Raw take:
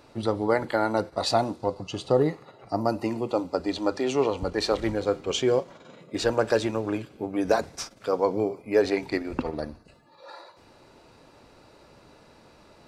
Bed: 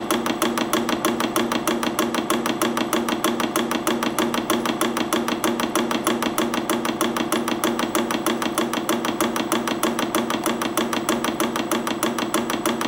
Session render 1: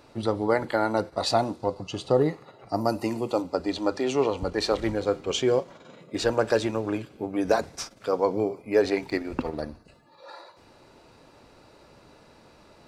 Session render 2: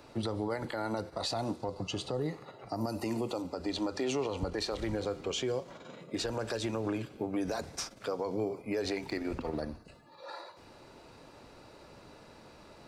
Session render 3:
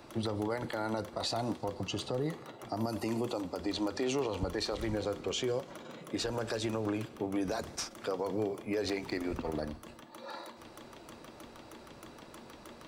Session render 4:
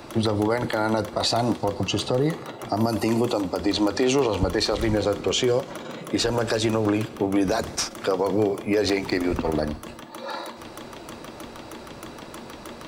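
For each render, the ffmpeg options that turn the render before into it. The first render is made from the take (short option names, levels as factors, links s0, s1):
-filter_complex "[0:a]asettb=1/sr,asplit=3[s0][s1][s2];[s0]atrim=end=2.734[s3];[s1]atrim=start=2.73:end=3.42,asetpts=PTS-STARTPTS,afade=t=in:d=0.004:c=qsin,afade=t=out:st=0.686:d=0.004:c=qsin,highshelf=f=6400:g=10.5[s4];[s2]atrim=start=3.416[s5];[s3][s4]acrossfade=d=0.004:c1=hsin:c2=qsin[s6];[s6][s5]acrossfade=d=0.004:c1=qsin:c2=hsin,asettb=1/sr,asplit=3[s7][s8][s9];[s7]atrim=end=8.954[s10];[s8]atrim=start=8.95:end=9.62,asetpts=PTS-STARTPTS,afade=t=in:d=0.004:c=qsin,afade=t=out:st=0.666:d=0.004:c=qsin,aeval=exprs='sgn(val(0))*max(abs(val(0))-0.00168,0)':c=same[s11];[s9]atrim=start=9.616[s12];[s10][s11]acrossfade=d=0.004:c1=hsin:c2=qsin[s13];[s13][s12]acrossfade=d=0.004:c1=qsin:c2=hsin"
-filter_complex "[0:a]acrossover=split=130|3000[s0][s1][s2];[s1]acompressor=threshold=0.0562:ratio=6[s3];[s0][s3][s2]amix=inputs=3:normalize=0,alimiter=level_in=1.06:limit=0.0631:level=0:latency=1:release=89,volume=0.944"
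-filter_complex "[1:a]volume=0.0299[s0];[0:a][s0]amix=inputs=2:normalize=0"
-af "volume=3.76"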